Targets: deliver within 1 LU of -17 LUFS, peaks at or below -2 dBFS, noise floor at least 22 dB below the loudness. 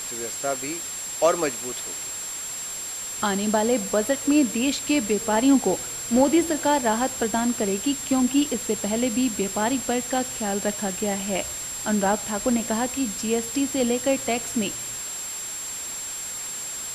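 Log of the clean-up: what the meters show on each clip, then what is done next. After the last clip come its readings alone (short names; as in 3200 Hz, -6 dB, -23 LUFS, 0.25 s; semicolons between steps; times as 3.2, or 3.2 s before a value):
steady tone 7500 Hz; tone level -31 dBFS; noise floor -33 dBFS; noise floor target -46 dBFS; loudness -24.0 LUFS; peak -7.5 dBFS; loudness target -17.0 LUFS
-> notch 7500 Hz, Q 30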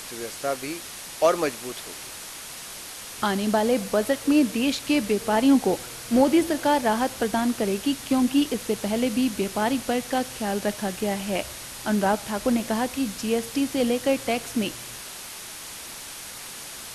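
steady tone none; noise floor -39 dBFS; noise floor target -47 dBFS
-> denoiser 8 dB, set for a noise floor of -39 dBFS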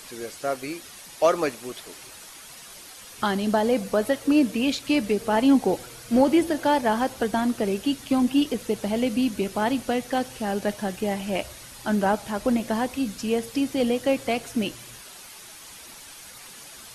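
noise floor -44 dBFS; noise floor target -47 dBFS
-> denoiser 6 dB, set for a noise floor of -44 dBFS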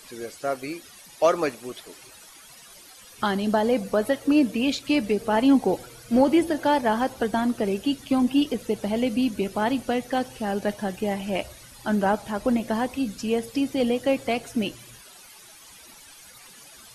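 noise floor -48 dBFS; loudness -24.5 LUFS; peak -8.0 dBFS; loudness target -17.0 LUFS
-> gain +7.5 dB; limiter -2 dBFS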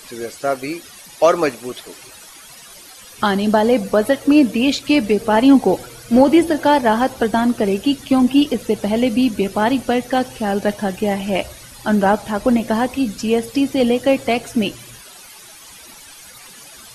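loudness -17.0 LUFS; peak -2.0 dBFS; noise floor -41 dBFS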